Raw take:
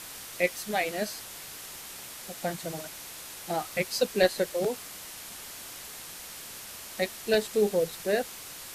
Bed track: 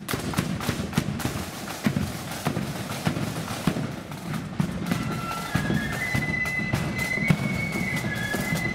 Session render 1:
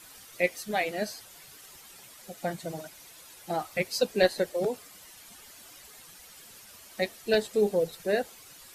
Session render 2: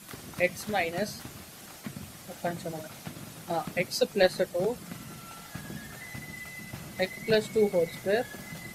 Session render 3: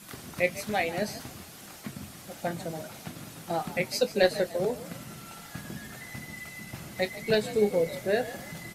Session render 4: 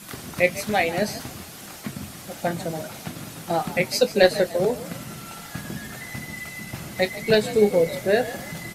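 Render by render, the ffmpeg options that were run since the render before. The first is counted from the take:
-af "afftdn=nr=11:nf=-43"
-filter_complex "[1:a]volume=-16dB[a];[0:a][a]amix=inputs=2:normalize=0"
-filter_complex "[0:a]asplit=2[a][b];[b]adelay=24,volume=-13dB[c];[a][c]amix=inputs=2:normalize=0,asplit=4[d][e][f][g];[e]adelay=147,afreqshift=58,volume=-15.5dB[h];[f]adelay=294,afreqshift=116,volume=-24.1dB[i];[g]adelay=441,afreqshift=174,volume=-32.8dB[j];[d][h][i][j]amix=inputs=4:normalize=0"
-af "volume=6.5dB"

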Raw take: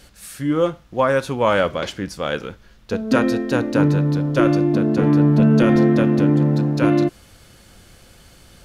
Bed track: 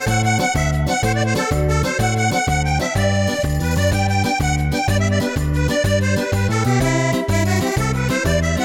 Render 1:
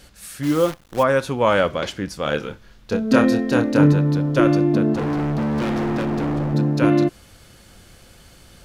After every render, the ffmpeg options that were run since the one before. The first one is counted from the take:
-filter_complex "[0:a]asplit=3[a][b][c];[a]afade=t=out:st=0.42:d=0.02[d];[b]acrusher=bits=6:dc=4:mix=0:aa=0.000001,afade=t=in:st=0.42:d=0.02,afade=t=out:st=1.02:d=0.02[e];[c]afade=t=in:st=1.02:d=0.02[f];[d][e][f]amix=inputs=3:normalize=0,asettb=1/sr,asplit=3[g][h][i];[g]atrim=end=2.234[j];[h]atrim=start=2.23:end=3.93,asetpts=PTS-STARTPTS,afade=t=in:d=0.004:c=qsin,afade=t=out:st=1.696:d=0.004:c=qsin,asplit=2[k][l];[l]adelay=27,volume=-6.5dB[m];[k][m]amix=inputs=2:normalize=0,atrim=end_sample=74970[n];[i]atrim=start=3.926[o];[j][n]acrossfade=d=0.004:c1=hsin:c2=qsin[p];[p][o]acrossfade=d=0.004:c1=qsin:c2=hsin,asplit=3[q][r][s];[q]afade=t=out:st=4.93:d=0.02[t];[r]volume=20.5dB,asoftclip=hard,volume=-20.5dB,afade=t=in:st=4.93:d=0.02,afade=t=out:st=6.53:d=0.02[u];[s]afade=t=in:st=6.53:d=0.02[v];[t][u][v]amix=inputs=3:normalize=0"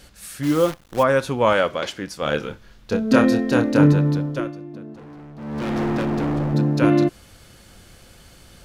-filter_complex "[0:a]asettb=1/sr,asplit=3[a][b][c];[a]atrim=end=1.534[d];[b]atrim=start=1.53:end=2.22,asetpts=PTS-STARTPTS,afade=t=in:d=0.004:c=qsin,afade=t=out:st=0.686:d=0.004:c=qsin,lowshelf=f=190:g=-11[e];[c]atrim=start=2.216[f];[d][e]acrossfade=d=0.004:c1=hsin:c2=qsin[g];[g][f]acrossfade=d=0.004:c1=qsin:c2=hsin,asplit=3[h][i][j];[h]atrim=end=4.52,asetpts=PTS-STARTPTS,afade=t=out:st=4.07:d=0.45:silence=0.11885[k];[i]atrim=start=4.52:end=5.36,asetpts=PTS-STARTPTS,volume=-18.5dB[l];[j]atrim=start=5.36,asetpts=PTS-STARTPTS,afade=t=in:d=0.45:silence=0.11885[m];[k][l][m]concat=n=3:v=0:a=1"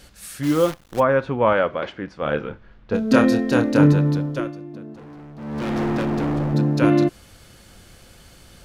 -filter_complex "[0:a]asplit=3[a][b][c];[a]afade=t=out:st=0.99:d=0.02[d];[b]lowpass=2.1k,afade=t=in:st=0.99:d=0.02,afade=t=out:st=2.93:d=0.02[e];[c]afade=t=in:st=2.93:d=0.02[f];[d][e][f]amix=inputs=3:normalize=0"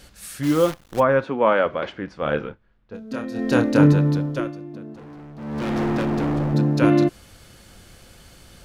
-filter_complex "[0:a]asettb=1/sr,asplit=3[a][b][c];[a]atrim=end=1.244[d];[b]atrim=start=1.24:end=1.66,asetpts=PTS-STARTPTS,afade=t=in:d=0.004:c=qsin,afade=t=out:st=0.416:d=0.004:c=qsin,highpass=f=180:w=0.5412,highpass=f=180:w=1.3066[e];[c]atrim=start=1.656[f];[d][e]acrossfade=d=0.004:c1=hsin:c2=qsin[g];[g][f]acrossfade=d=0.004:c1=qsin:c2=hsin,asplit=3[h][i][j];[h]atrim=end=2.56,asetpts=PTS-STARTPTS,afade=t=out:st=2.41:d=0.15:c=qsin:silence=0.188365[k];[i]atrim=start=2.56:end=3.34,asetpts=PTS-STARTPTS,volume=-14.5dB[l];[j]atrim=start=3.34,asetpts=PTS-STARTPTS,afade=t=in:d=0.15:c=qsin:silence=0.188365[m];[k][l][m]concat=n=3:v=0:a=1"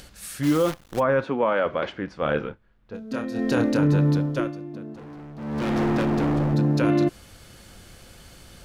-af "alimiter=limit=-13dB:level=0:latency=1:release=18,acompressor=mode=upward:threshold=-44dB:ratio=2.5"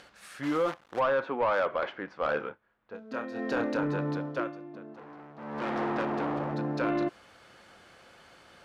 -af "bandpass=f=1.1k:t=q:w=0.73:csg=0,asoftclip=type=tanh:threshold=-19dB"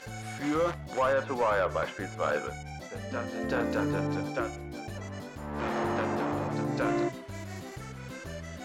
-filter_complex "[1:a]volume=-23dB[a];[0:a][a]amix=inputs=2:normalize=0"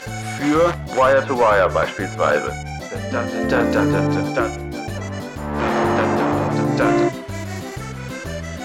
-af "volume=12dB"

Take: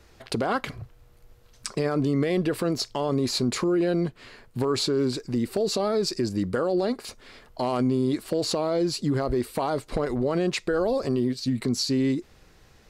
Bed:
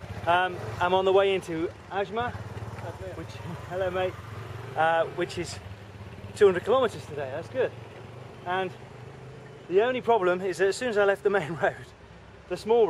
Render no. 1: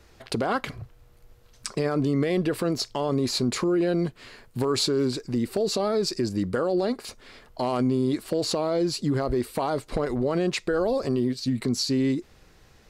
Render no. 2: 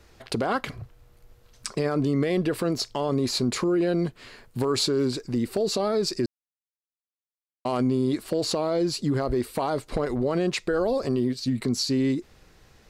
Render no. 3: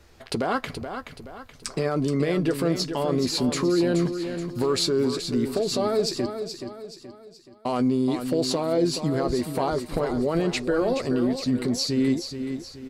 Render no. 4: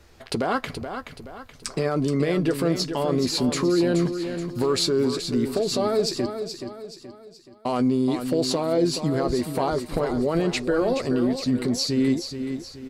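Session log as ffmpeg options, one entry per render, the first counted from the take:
-filter_complex "[0:a]asettb=1/sr,asplit=3[a][b][c];[a]atrim=end=3.994[d];[b]atrim=start=3.99:end=5.07,asetpts=PTS-STARTPTS,afade=t=in:d=0.004:c=qsin,afade=t=out:st=1.076:d=0.004:c=qsin,highshelf=f=4.7k:g=4.5[e];[c]atrim=start=5.066[f];[d][e]acrossfade=d=0.004:c1=hsin:c2=qsin[g];[g][f]acrossfade=d=0.004:c1=qsin:c2=hsin"
-filter_complex "[0:a]asplit=3[a][b][c];[a]atrim=end=6.26,asetpts=PTS-STARTPTS,afade=t=out:st=6.256:d=0.004:c=hsin[d];[b]atrim=start=6.26:end=7.65,asetpts=PTS-STARTPTS,volume=0[e];[c]atrim=start=7.65,asetpts=PTS-STARTPTS,afade=t=in:d=0.004:c=hsin[f];[d][e][f]concat=n=3:v=0:a=1"
-filter_complex "[0:a]asplit=2[a][b];[b]adelay=12,volume=-10.5dB[c];[a][c]amix=inputs=2:normalize=0,aecho=1:1:426|852|1278|1704|2130:0.376|0.158|0.0663|0.0278|0.0117"
-af "volume=1dB"

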